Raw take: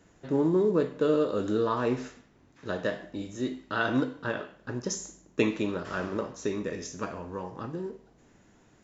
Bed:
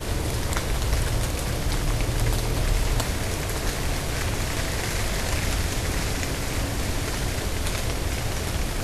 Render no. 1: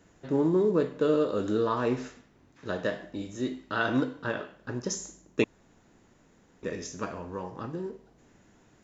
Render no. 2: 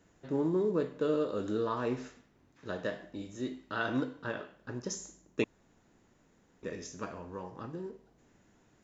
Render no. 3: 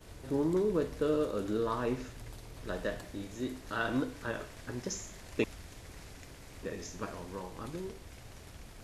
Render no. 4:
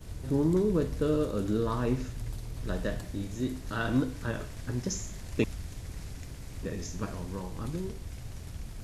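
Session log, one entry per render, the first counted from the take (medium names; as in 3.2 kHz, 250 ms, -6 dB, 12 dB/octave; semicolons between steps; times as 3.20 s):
5.44–6.63 s: room tone
trim -5.5 dB
add bed -23.5 dB
tone controls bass +11 dB, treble +4 dB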